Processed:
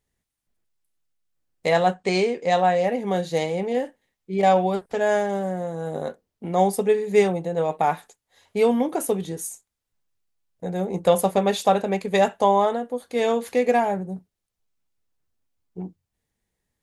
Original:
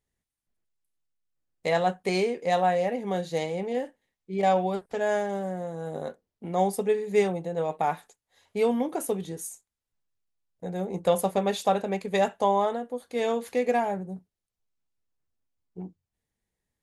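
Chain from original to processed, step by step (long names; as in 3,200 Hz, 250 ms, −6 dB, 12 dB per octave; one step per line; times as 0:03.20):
0:01.94–0:02.84: elliptic low-pass filter 8,300 Hz, stop band 40 dB
level +5 dB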